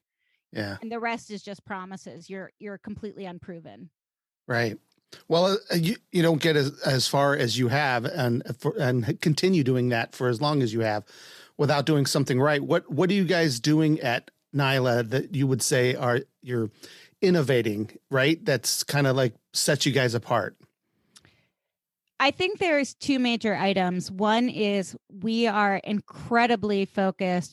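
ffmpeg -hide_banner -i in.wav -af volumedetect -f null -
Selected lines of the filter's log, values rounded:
mean_volume: -25.5 dB
max_volume: -8.3 dB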